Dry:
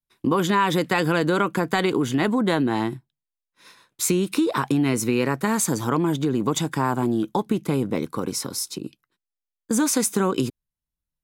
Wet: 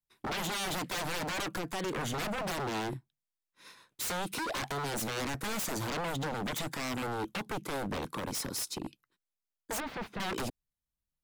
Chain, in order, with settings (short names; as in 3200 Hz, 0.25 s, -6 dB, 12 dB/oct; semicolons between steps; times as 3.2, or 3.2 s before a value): 1.47–1.95 compressor 6:1, threshold -23 dBFS, peak gain reduction 6.5 dB; wavefolder -25.5 dBFS; 9.8–10.2 air absorption 360 m; gain -4 dB